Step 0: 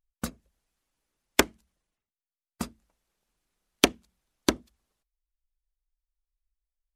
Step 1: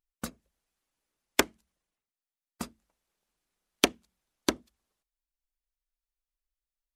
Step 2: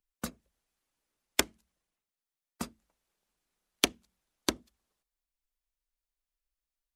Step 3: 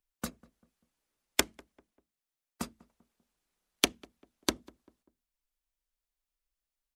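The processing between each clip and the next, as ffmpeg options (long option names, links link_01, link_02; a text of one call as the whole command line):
ffmpeg -i in.wav -af "lowshelf=frequency=150:gain=-6.5,volume=-2.5dB" out.wav
ffmpeg -i in.wav -filter_complex "[0:a]acrossover=split=160|3000[link_01][link_02][link_03];[link_02]acompressor=threshold=-30dB:ratio=2[link_04];[link_01][link_04][link_03]amix=inputs=3:normalize=0" out.wav
ffmpeg -i in.wav -filter_complex "[0:a]asplit=2[link_01][link_02];[link_02]adelay=196,lowpass=frequency=1100:poles=1,volume=-22dB,asplit=2[link_03][link_04];[link_04]adelay=196,lowpass=frequency=1100:poles=1,volume=0.43,asplit=2[link_05][link_06];[link_06]adelay=196,lowpass=frequency=1100:poles=1,volume=0.43[link_07];[link_01][link_03][link_05][link_07]amix=inputs=4:normalize=0" out.wav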